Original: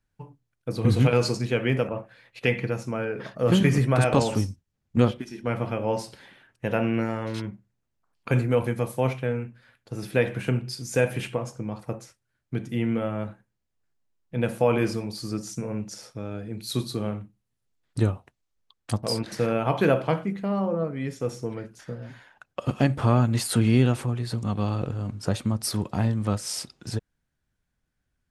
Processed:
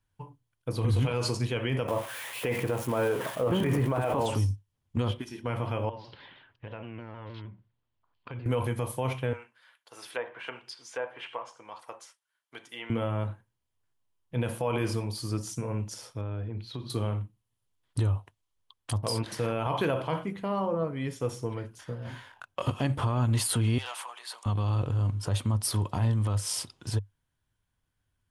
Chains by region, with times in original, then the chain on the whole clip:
1.88–4.26 switching spikes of -22 dBFS + EQ curve 120 Hz 0 dB, 320 Hz +6 dB, 680 Hz +8 dB, 2300 Hz 0 dB, 4500 Hz -11 dB
5.89–8.46 steep low-pass 4500 Hz + compressor 2.5:1, threshold -43 dBFS + shaped vibrato saw down 6.4 Hz, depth 100 cents
9.33–12.9 HPF 820 Hz + notch 2500 Hz, Q 28 + treble ducked by the level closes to 1100 Hz, closed at -29 dBFS
16.21–16.9 compressor 10:1, threshold -29 dBFS + air absorption 260 m
22.05–22.7 notches 50/100/150/200/250/300/350/400/450 Hz + sample leveller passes 1 + doubler 23 ms -3 dB
23.78–24.46 HPF 750 Hz 24 dB/oct + hard clip -25.5 dBFS + core saturation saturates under 1500 Hz
whole clip: thirty-one-band EQ 100 Hz +9 dB, 200 Hz -5 dB, 1000 Hz +8 dB, 3150 Hz +7 dB, 10000 Hz +7 dB; limiter -16 dBFS; gain -2.5 dB

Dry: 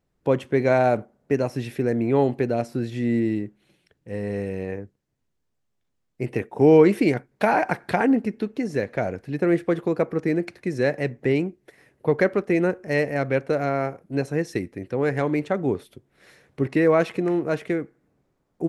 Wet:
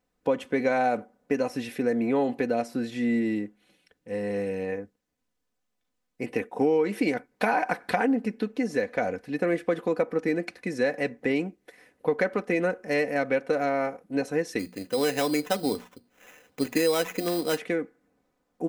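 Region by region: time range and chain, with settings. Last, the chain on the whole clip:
14.59–17.58 notches 60/120/180/240 Hz + sample-rate reducer 4500 Hz
whole clip: low shelf 230 Hz -9 dB; comb 4 ms, depth 58%; compressor 6:1, threshold -20 dBFS

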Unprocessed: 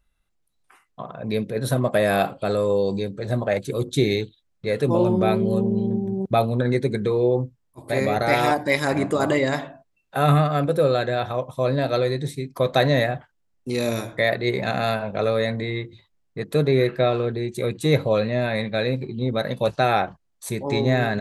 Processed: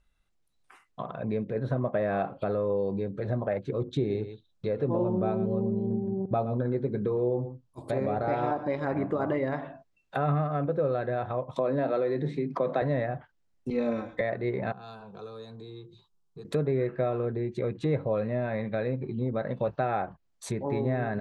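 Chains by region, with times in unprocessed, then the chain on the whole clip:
3.97–8.85 bell 2000 Hz -8.5 dB 0.46 oct + echo 0.116 s -13.5 dB
11.56–12.82 steep high-pass 150 Hz 48 dB/oct + fast leveller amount 50%
13.7–14.21 high shelf 9500 Hz +3 dB + comb 3.9 ms, depth 99% + three-band expander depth 100%
14.72–16.45 compressor 2:1, threshold -46 dBFS + fixed phaser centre 400 Hz, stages 8
whole clip: LPF 9000 Hz; compressor 2:1, threshold -28 dBFS; treble ducked by the level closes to 1500 Hz, closed at -26 dBFS; gain -1 dB

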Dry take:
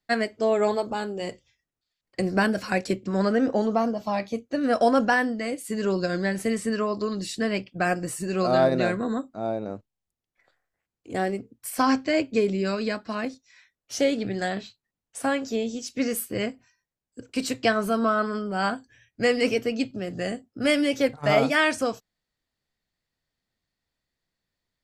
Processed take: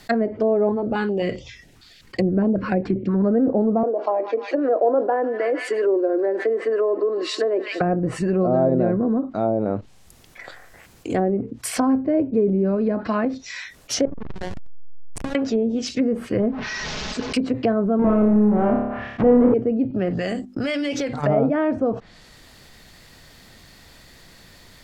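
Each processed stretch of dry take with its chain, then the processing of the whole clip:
0.69–3.24 high shelf 5800 Hz -10.5 dB + stepped notch 7.5 Hz 560–1600 Hz
3.83–7.81 steep high-pass 330 Hz 48 dB/oct + tilt -2.5 dB/oct + thin delay 0.15 s, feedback 52%, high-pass 2500 Hz, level -6 dB
14.05–15.35 compressor, threshold -32 dBFS + backlash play -24.5 dBFS
16.39–17.33 delta modulation 32 kbps, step -40.5 dBFS + comb 4.7 ms, depth 48%
17.99–19.54 half-waves squared off + LPF 2100 Hz + flutter echo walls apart 4.9 m, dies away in 0.54 s
20.1–21.2 notches 50/100/150/200/250/300/350 Hz + gate -52 dBFS, range -14 dB + compressor, threshold -33 dBFS
whole clip: treble ducked by the level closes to 570 Hz, closed at -23 dBFS; fast leveller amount 50%

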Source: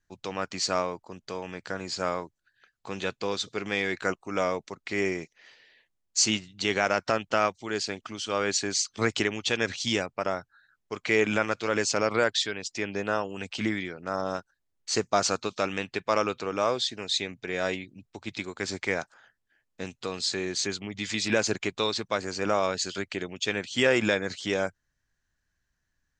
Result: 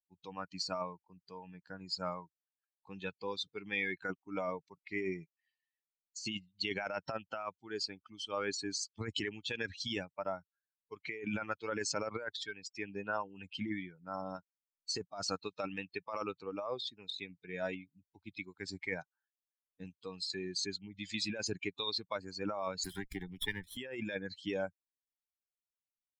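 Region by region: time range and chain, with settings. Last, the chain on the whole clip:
22.84–23.77 minimum comb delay 0.55 ms + three-band squash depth 70%
whole clip: per-bin expansion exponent 2; bell 4000 Hz +6 dB 0.49 oct; negative-ratio compressor -34 dBFS, ratio -1; gain -3 dB

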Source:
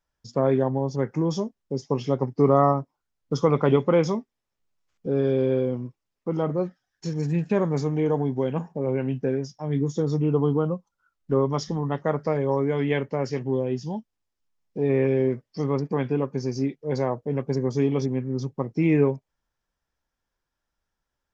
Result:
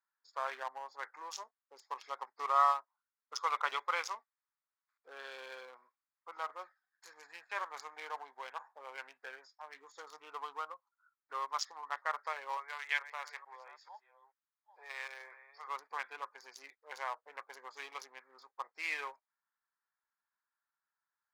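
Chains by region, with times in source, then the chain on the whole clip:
12.57–15.68 reverse delay 0.439 s, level -13 dB + HPF 670 Hz
whole clip: Wiener smoothing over 15 samples; HPF 1100 Hz 24 dB/oct; gain +1 dB

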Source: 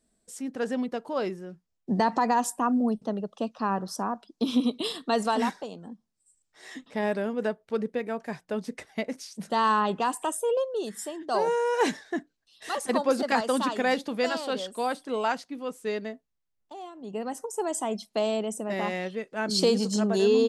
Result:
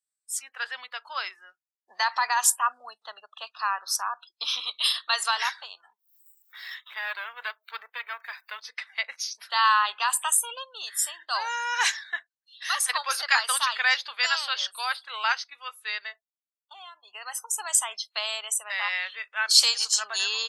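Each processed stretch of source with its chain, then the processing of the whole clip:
5.8–8.61 half-wave gain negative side -7 dB + upward compressor, threshold -40 dBFS
whole clip: high shelf 5500 Hz +7 dB; spectral noise reduction 25 dB; HPF 1200 Hz 24 dB/oct; gain +8 dB

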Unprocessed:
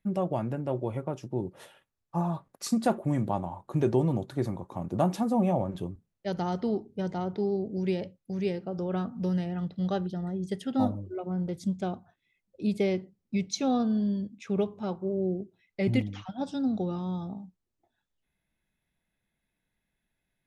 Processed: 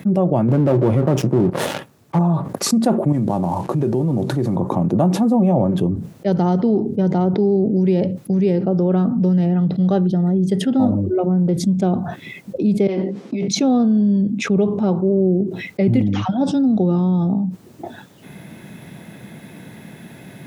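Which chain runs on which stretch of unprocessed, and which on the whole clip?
0.48–2.19 half-wave gain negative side -7 dB + sample leveller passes 3
3.12–4.56 CVSD 64 kbps + compressor 2.5:1, threshold -40 dBFS
12.87–13.48 negative-ratio compressor -34 dBFS, ratio -0.5 + BPF 400–4900 Hz + doubler 15 ms -5 dB
whole clip: HPF 120 Hz 24 dB/oct; tilt shelf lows +6.5 dB, about 820 Hz; fast leveller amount 70%; gain +3 dB

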